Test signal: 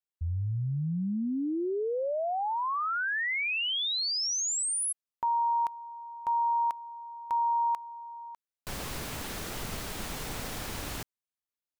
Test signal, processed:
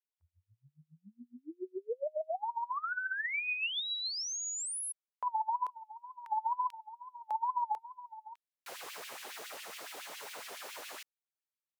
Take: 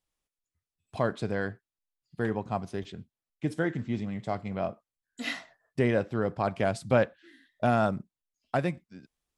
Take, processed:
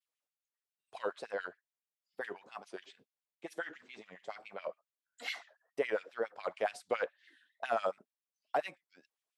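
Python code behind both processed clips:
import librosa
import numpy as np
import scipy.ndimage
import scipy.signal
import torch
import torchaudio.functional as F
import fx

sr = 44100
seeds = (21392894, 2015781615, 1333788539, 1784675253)

y = fx.wow_flutter(x, sr, seeds[0], rate_hz=2.1, depth_cents=130.0)
y = fx.filter_lfo_highpass(y, sr, shape='sine', hz=7.2, low_hz=440.0, high_hz=2800.0, q=2.2)
y = y * 10.0 ** (-8.0 / 20.0)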